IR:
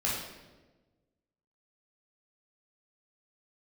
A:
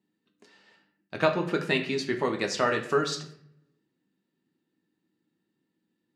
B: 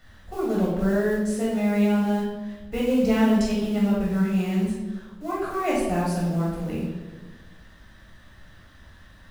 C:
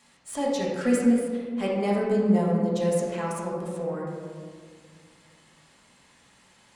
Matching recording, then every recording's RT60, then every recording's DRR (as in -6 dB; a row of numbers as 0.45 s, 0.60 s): B; 0.70 s, 1.2 s, 1.9 s; 4.0 dB, -6.0 dB, -5.0 dB